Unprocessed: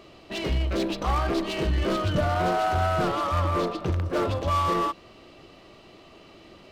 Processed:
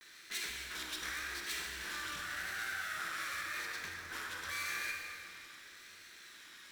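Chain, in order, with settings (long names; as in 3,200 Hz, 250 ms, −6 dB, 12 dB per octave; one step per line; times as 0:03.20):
lower of the sound and its delayed copy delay 0.53 ms
graphic EQ with 15 bands 100 Hz −4 dB, 630 Hz −6 dB, 1,600 Hz +12 dB
downward compressor, threshold −31 dBFS, peak gain reduction 11.5 dB
first-order pre-emphasis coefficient 0.97
pitch vibrato 0.88 Hz 88 cents
convolution reverb RT60 2.9 s, pre-delay 27 ms, DRR 0.5 dB
level +4 dB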